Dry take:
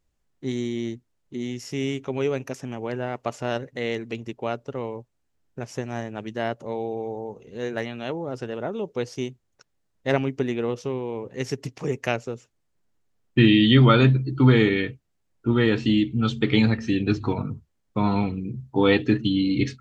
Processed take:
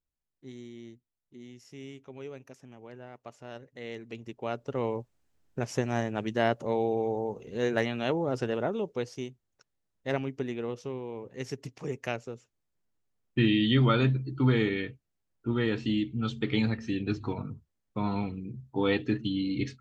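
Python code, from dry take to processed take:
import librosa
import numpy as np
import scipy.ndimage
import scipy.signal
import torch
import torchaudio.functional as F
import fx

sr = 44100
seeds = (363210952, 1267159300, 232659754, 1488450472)

y = fx.gain(x, sr, db=fx.line((3.47, -17.0), (4.46, -6.0), (4.88, 1.5), (8.52, 1.5), (9.25, -8.0)))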